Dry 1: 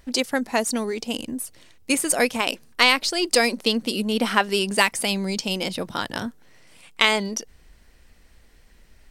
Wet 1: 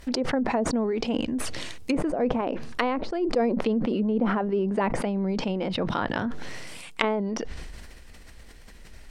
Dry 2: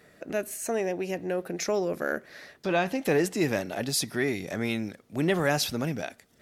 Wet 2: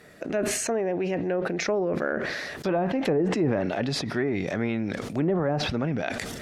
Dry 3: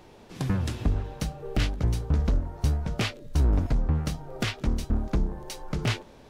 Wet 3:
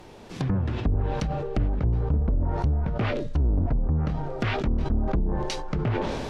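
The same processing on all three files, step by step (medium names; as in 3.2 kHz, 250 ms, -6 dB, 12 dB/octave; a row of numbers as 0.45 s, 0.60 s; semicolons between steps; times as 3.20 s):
compression 1.5:1, threshold -34 dBFS; low-pass that closes with the level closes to 640 Hz, closed at -24.5 dBFS; decay stretcher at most 26 dB/s; normalise loudness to -27 LUFS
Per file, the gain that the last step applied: +4.0 dB, +5.5 dB, +4.5 dB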